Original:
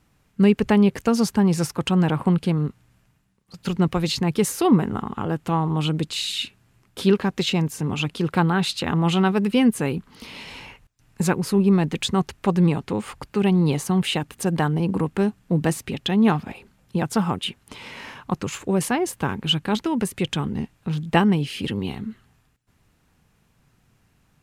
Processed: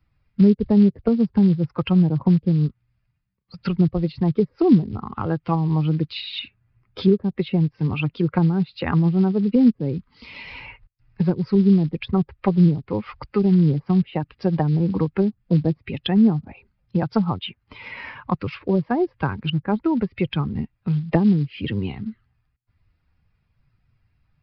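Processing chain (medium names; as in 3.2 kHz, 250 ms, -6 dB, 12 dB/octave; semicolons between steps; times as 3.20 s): expander on every frequency bin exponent 1.5; low-pass that closes with the level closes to 410 Hz, closed at -20.5 dBFS; short-mantissa float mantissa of 4-bit; resampled via 11.025 kHz; three bands compressed up and down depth 40%; trim +6 dB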